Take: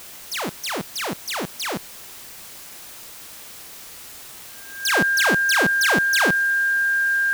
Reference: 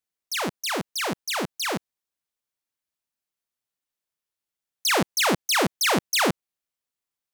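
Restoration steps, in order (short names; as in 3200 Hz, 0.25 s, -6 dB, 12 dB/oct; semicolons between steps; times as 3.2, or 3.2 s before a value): notch 1600 Hz, Q 30; noise print and reduce 30 dB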